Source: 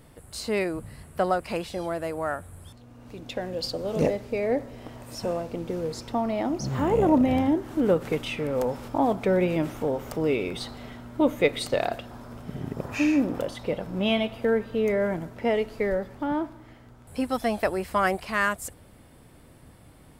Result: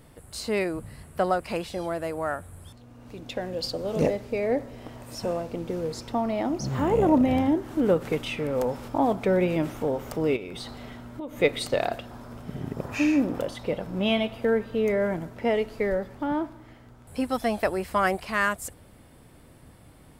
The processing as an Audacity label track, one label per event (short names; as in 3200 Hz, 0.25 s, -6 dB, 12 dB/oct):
10.360000	11.410000	compressor, threshold -33 dBFS